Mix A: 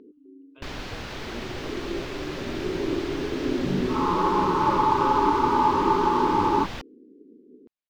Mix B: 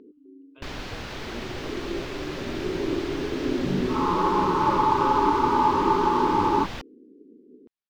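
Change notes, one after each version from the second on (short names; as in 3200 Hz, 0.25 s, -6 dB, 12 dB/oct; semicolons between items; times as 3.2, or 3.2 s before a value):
none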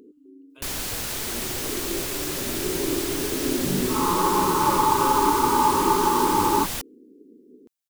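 master: remove air absorption 230 m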